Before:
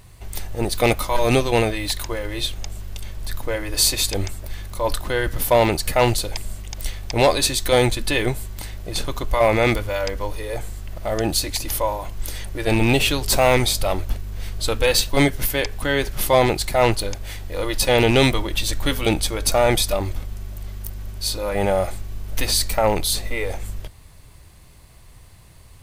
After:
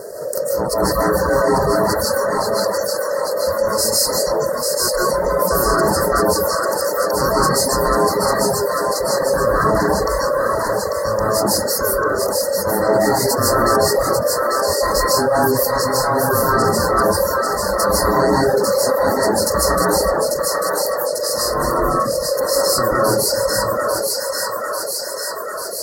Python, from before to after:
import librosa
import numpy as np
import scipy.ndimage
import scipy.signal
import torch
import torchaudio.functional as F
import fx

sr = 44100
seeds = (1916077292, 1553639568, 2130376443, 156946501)

p1 = x * np.sin(2.0 * np.pi * 540.0 * np.arange(len(x)) / sr)
p2 = fx.peak_eq(p1, sr, hz=390.0, db=8.0, octaves=0.26)
p3 = 10.0 ** (-16.5 / 20.0) * np.tanh(p2 / 10.0 ** (-16.5 / 20.0))
p4 = p2 + F.gain(torch.from_numpy(p3), -9.5).numpy()
p5 = scipy.signal.sosfilt(scipy.signal.butter(2, 64.0, 'highpass', fs=sr, output='sos'), p4)
p6 = p5 + fx.echo_thinned(p5, sr, ms=844, feedback_pct=55, hz=820.0, wet_db=-5, dry=0)
p7 = fx.rev_freeverb(p6, sr, rt60_s=0.96, hf_ratio=0.45, predelay_ms=110, drr_db=-7.5)
p8 = fx.dereverb_blind(p7, sr, rt60_s=0.66)
p9 = scipy.signal.sosfilt(scipy.signal.cheby1(5, 1.0, [1900.0, 4300.0], 'bandstop', fs=sr, output='sos'), p8)
p10 = fx.high_shelf(p9, sr, hz=7400.0, db=4.0)
p11 = fx.env_flatten(p10, sr, amount_pct=50)
y = F.gain(torch.from_numpy(p11), -5.5).numpy()